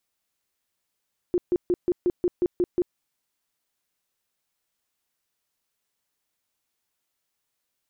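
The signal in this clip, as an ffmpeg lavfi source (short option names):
-f lavfi -i "aevalsrc='0.126*sin(2*PI*355*mod(t,0.18))*lt(mod(t,0.18),14/355)':d=1.62:s=44100"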